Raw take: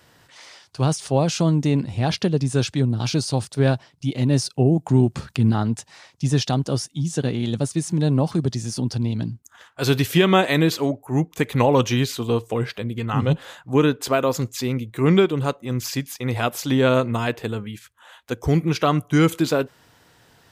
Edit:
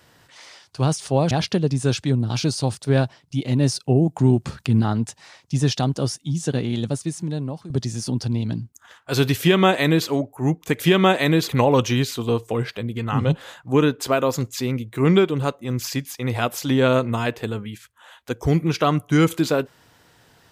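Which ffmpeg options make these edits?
ffmpeg -i in.wav -filter_complex "[0:a]asplit=5[link_01][link_02][link_03][link_04][link_05];[link_01]atrim=end=1.312[link_06];[link_02]atrim=start=2.008:end=8.4,asetpts=PTS-STARTPTS,afade=type=out:start_time=5.432:duration=0.96:silence=0.133352[link_07];[link_03]atrim=start=8.4:end=11.502,asetpts=PTS-STARTPTS,afade=type=in:duration=0.004:curve=hsin:silence=0.133352[link_08];[link_04]atrim=start=10.088:end=10.782[link_09];[link_05]atrim=start=11.498[link_10];[link_07][link_08]concat=n=2:v=0:a=1[link_11];[link_06][link_11]acrossfade=duration=0.004:curve1=hsin:curve2=hsin[link_12];[link_12][link_09]acrossfade=duration=0.004:curve1=hsin:curve2=hsin[link_13];[link_13][link_10]acrossfade=duration=0.004:curve1=hsin:curve2=hsin" out.wav

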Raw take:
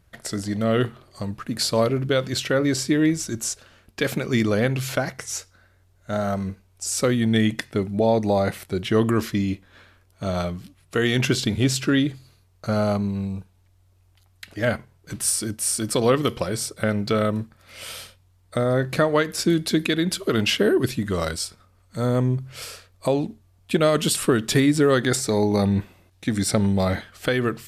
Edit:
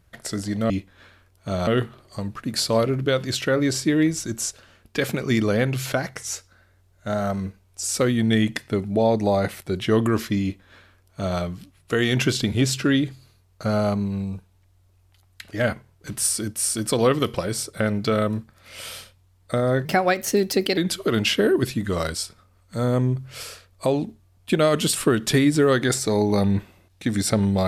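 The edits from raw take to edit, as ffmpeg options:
ffmpeg -i in.wav -filter_complex "[0:a]asplit=5[link_01][link_02][link_03][link_04][link_05];[link_01]atrim=end=0.702[link_06];[link_02]atrim=start=9.448:end=10.422[link_07];[link_03]atrim=start=0.698:end=18.884[link_08];[link_04]atrim=start=18.88:end=19.99,asetpts=PTS-STARTPTS,asetrate=52920,aresample=44100,atrim=end_sample=40792,asetpts=PTS-STARTPTS[link_09];[link_05]atrim=start=19.986[link_10];[link_06][link_07]acrossfade=duration=0.004:curve1=hsin:curve2=hsin[link_11];[link_11][link_08]acrossfade=duration=0.004:curve1=hsin:curve2=hsin[link_12];[link_12][link_09]acrossfade=duration=0.004:curve1=hsin:curve2=hsin[link_13];[link_13][link_10]acrossfade=duration=0.004:curve1=hsin:curve2=hsin" out.wav

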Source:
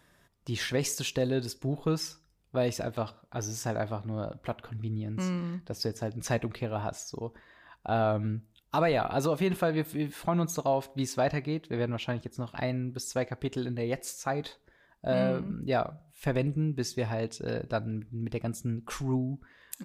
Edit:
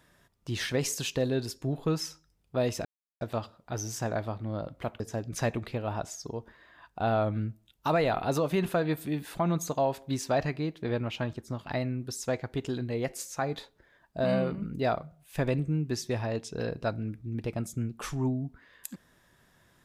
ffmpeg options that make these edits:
ffmpeg -i in.wav -filter_complex "[0:a]asplit=3[link_01][link_02][link_03];[link_01]atrim=end=2.85,asetpts=PTS-STARTPTS,afade=type=out:start_time=2.846:duration=0.004:curve=hsin,apad=pad_dur=0.36[link_04];[link_02]atrim=start=2.85:end=4.642,asetpts=PTS-STARTPTS,afade=type=in:duration=0.004:curve=hsin[link_05];[link_03]atrim=start=5.878[link_06];[link_04][link_05]concat=n=2:v=0:a=1[link_07];[link_07][link_06]acrossfade=duration=0.004:curve1=hsin:curve2=hsin" out.wav

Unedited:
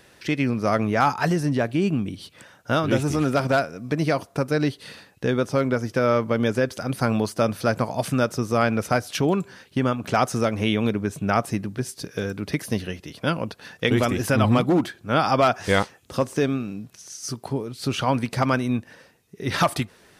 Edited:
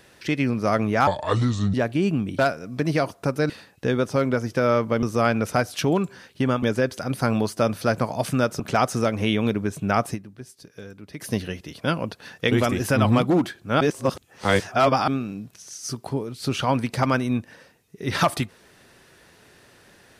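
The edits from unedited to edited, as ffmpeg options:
ffmpeg -i in.wav -filter_complex "[0:a]asplit=12[link_01][link_02][link_03][link_04][link_05][link_06][link_07][link_08][link_09][link_10][link_11][link_12];[link_01]atrim=end=1.074[link_13];[link_02]atrim=start=1.07:end=1.53,asetpts=PTS-STARTPTS,asetrate=30429,aresample=44100,atrim=end_sample=29400,asetpts=PTS-STARTPTS[link_14];[link_03]atrim=start=1.526:end=2.182[link_15];[link_04]atrim=start=3.508:end=4.622[link_16];[link_05]atrim=start=4.888:end=6.422[link_17];[link_06]atrim=start=8.388:end=9.992[link_18];[link_07]atrim=start=6.418:end=8.392[link_19];[link_08]atrim=start=9.988:end=11.72,asetpts=PTS-STARTPTS,afade=type=out:start_time=1.542:duration=0.19:curve=exp:silence=0.237137[link_20];[link_09]atrim=start=11.72:end=12.43,asetpts=PTS-STARTPTS,volume=-12.5dB[link_21];[link_10]atrim=start=12.43:end=15.202,asetpts=PTS-STARTPTS,afade=type=in:duration=0.19:curve=exp:silence=0.237137[link_22];[link_11]atrim=start=15.198:end=16.472,asetpts=PTS-STARTPTS,areverse[link_23];[link_12]atrim=start=16.468[link_24];[link_13][link_14]acrossfade=duration=0.004:curve1=hsin:curve2=hsin[link_25];[link_25][link_15]acrossfade=duration=0.004:curve1=hsin:curve2=hsin[link_26];[link_26][link_16]acrossfade=duration=0.004:curve1=hsin:curve2=hsin[link_27];[link_27][link_17]acrossfade=duration=0.004:curve1=hsin:curve2=hsin[link_28];[link_28][link_18]acrossfade=duration=0.004:curve1=hsin:curve2=hsin[link_29];[link_29][link_19]acrossfade=duration=0.004:curve1=hsin:curve2=hsin[link_30];[link_20][link_21][link_22]concat=n=3:v=0:a=1[link_31];[link_30][link_31]acrossfade=duration=0.004:curve1=hsin:curve2=hsin[link_32];[link_32][link_23]acrossfade=duration=0.004:curve1=hsin:curve2=hsin[link_33];[link_33][link_24]acrossfade=duration=0.004:curve1=hsin:curve2=hsin" out.wav

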